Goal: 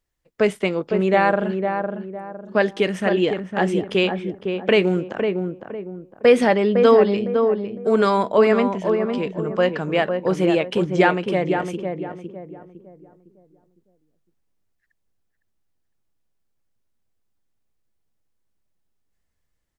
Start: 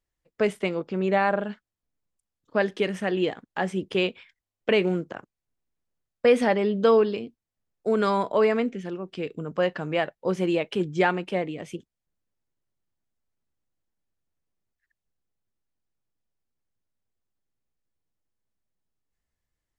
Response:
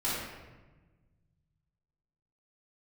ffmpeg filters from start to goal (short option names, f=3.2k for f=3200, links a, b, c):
-filter_complex "[0:a]asplit=2[a][b];[b]adelay=507,lowpass=f=1.1k:p=1,volume=-4.5dB,asplit=2[c][d];[d]adelay=507,lowpass=f=1.1k:p=1,volume=0.37,asplit=2[e][f];[f]adelay=507,lowpass=f=1.1k:p=1,volume=0.37,asplit=2[g][h];[h]adelay=507,lowpass=f=1.1k:p=1,volume=0.37,asplit=2[i][j];[j]adelay=507,lowpass=f=1.1k:p=1,volume=0.37[k];[a][c][e][g][i][k]amix=inputs=6:normalize=0,volume=5dB"